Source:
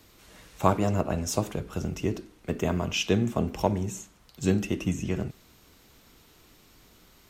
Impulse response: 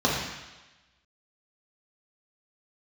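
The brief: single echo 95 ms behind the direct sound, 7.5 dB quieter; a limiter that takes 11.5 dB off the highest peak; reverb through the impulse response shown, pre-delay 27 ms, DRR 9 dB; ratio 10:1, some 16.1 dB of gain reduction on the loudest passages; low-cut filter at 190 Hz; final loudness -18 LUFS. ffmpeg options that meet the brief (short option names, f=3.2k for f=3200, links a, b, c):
-filter_complex "[0:a]highpass=190,acompressor=threshold=-35dB:ratio=10,alimiter=level_in=8.5dB:limit=-24dB:level=0:latency=1,volume=-8.5dB,aecho=1:1:95:0.422,asplit=2[a][b];[1:a]atrim=start_sample=2205,adelay=27[c];[b][c]afir=irnorm=-1:irlink=0,volume=-25dB[d];[a][d]amix=inputs=2:normalize=0,volume=24.5dB"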